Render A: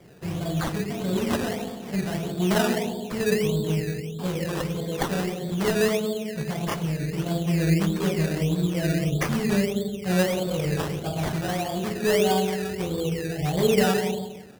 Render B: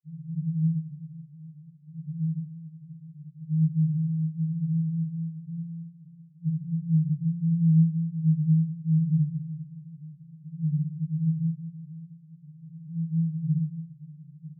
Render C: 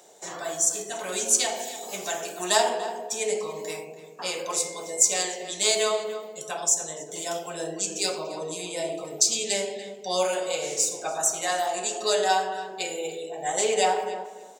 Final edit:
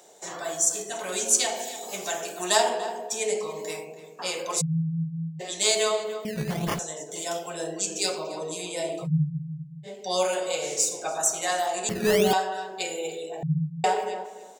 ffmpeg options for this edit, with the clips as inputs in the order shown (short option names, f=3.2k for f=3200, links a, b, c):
-filter_complex "[1:a]asplit=3[a][b][c];[0:a]asplit=2[d][e];[2:a]asplit=6[f][g][h][i][j][k];[f]atrim=end=4.62[l];[a]atrim=start=4.6:end=5.41[m];[g]atrim=start=5.39:end=6.252[n];[d]atrim=start=6.248:end=6.792[o];[h]atrim=start=6.788:end=9.08[p];[b]atrim=start=9.02:end=9.89[q];[i]atrim=start=9.83:end=11.892[r];[e]atrim=start=11.888:end=12.332[s];[j]atrim=start=12.328:end=13.432[t];[c]atrim=start=13.428:end=13.842[u];[k]atrim=start=13.838[v];[l][m]acrossfade=d=0.02:c1=tri:c2=tri[w];[w][n]acrossfade=d=0.02:c1=tri:c2=tri[x];[x][o]acrossfade=d=0.004:c1=hsin:c2=hsin[y];[y][p]acrossfade=d=0.004:c1=hsin:c2=hsin[z];[z][q]acrossfade=d=0.06:c1=tri:c2=tri[aa];[aa][r]acrossfade=d=0.06:c1=tri:c2=tri[ab];[ab][s]acrossfade=d=0.004:c1=hsin:c2=hsin[ac];[ac][t]acrossfade=d=0.004:c1=hsin:c2=hsin[ad];[ad][u]acrossfade=d=0.004:c1=hsin:c2=hsin[ae];[ae][v]acrossfade=d=0.004:c1=hsin:c2=hsin"